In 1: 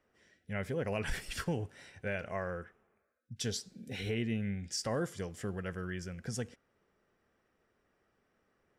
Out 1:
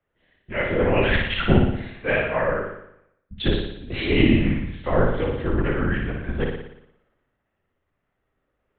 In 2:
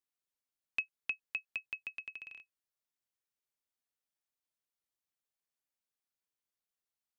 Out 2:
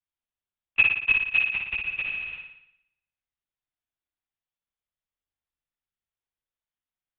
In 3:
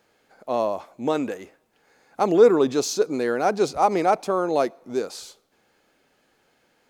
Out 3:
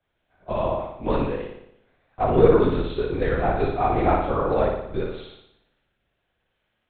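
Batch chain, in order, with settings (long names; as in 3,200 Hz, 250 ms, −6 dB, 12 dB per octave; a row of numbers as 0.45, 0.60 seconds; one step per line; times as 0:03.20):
downward compressor 2 to 1, threshold −26 dBFS
multi-voice chorus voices 4, 0.68 Hz, delay 19 ms, depth 4.7 ms
linear-prediction vocoder at 8 kHz whisper
on a send: flutter between parallel walls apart 10 metres, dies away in 0.93 s
on the sum: multiband upward and downward expander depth 40%
loudness normalisation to −23 LKFS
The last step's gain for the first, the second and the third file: +16.0, +17.0, +6.0 decibels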